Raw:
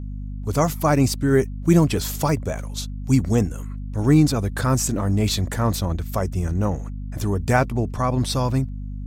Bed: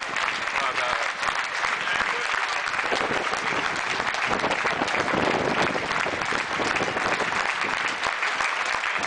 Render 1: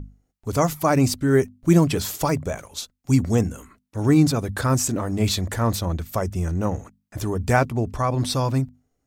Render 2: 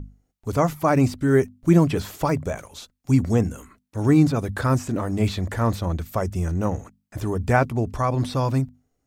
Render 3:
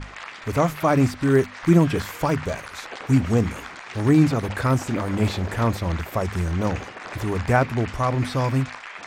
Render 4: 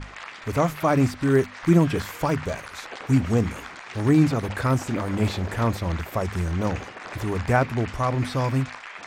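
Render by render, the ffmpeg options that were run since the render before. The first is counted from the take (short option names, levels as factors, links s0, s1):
-af "bandreject=f=50:t=h:w=6,bandreject=f=100:t=h:w=6,bandreject=f=150:t=h:w=6,bandreject=f=200:t=h:w=6,bandreject=f=250:t=h:w=6"
-filter_complex "[0:a]acrossover=split=2900[s0][s1];[s1]acompressor=threshold=0.0112:ratio=4:attack=1:release=60[s2];[s0][s2]amix=inputs=2:normalize=0"
-filter_complex "[1:a]volume=0.251[s0];[0:a][s0]amix=inputs=2:normalize=0"
-af "volume=0.841"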